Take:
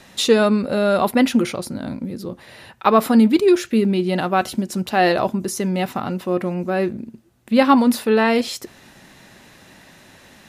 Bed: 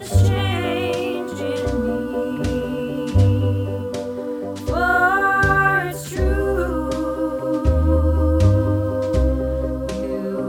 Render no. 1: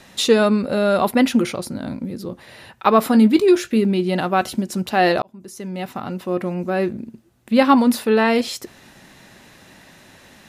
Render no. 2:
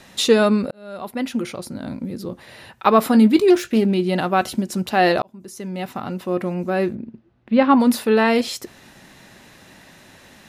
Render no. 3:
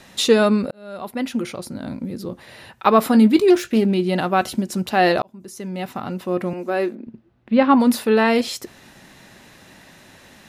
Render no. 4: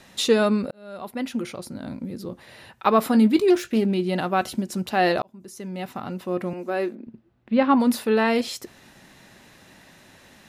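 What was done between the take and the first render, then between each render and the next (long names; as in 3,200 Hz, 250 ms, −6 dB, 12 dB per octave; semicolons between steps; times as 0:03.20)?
0:03.12–0:03.77: double-tracking delay 19 ms −11.5 dB; 0:05.22–0:07.00: fade in equal-power
0:00.71–0:02.16: fade in; 0:03.50–0:03.94: phase distortion by the signal itself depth 0.14 ms; 0:06.95–0:07.80: high-frequency loss of the air 290 metres
0:06.53–0:07.07: high-pass filter 250 Hz 24 dB per octave
level −4 dB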